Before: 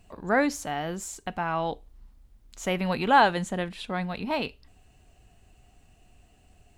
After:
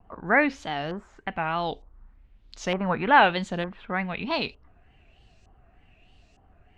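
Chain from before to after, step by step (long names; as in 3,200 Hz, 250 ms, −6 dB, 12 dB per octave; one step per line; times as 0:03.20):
auto-filter low-pass saw up 1.1 Hz 990–5,900 Hz
pitch vibrato 3.3 Hz 97 cents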